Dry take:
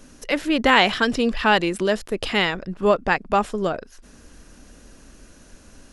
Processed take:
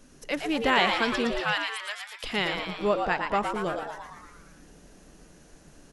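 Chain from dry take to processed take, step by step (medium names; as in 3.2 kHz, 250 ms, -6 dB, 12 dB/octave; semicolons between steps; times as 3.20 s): 1.40–2.24 s: high-pass 1 kHz 24 dB/octave; frequency-shifting echo 115 ms, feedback 60%, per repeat +140 Hz, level -5.5 dB; trim -7.5 dB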